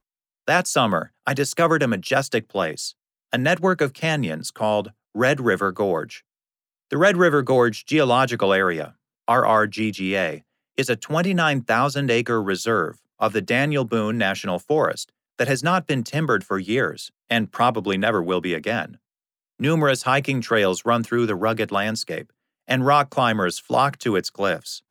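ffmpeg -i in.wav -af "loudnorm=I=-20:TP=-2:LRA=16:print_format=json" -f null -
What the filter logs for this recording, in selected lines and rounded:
"input_i" : "-21.4",
"input_tp" : "-4.4",
"input_lra" : "2.6",
"input_thresh" : "-31.8",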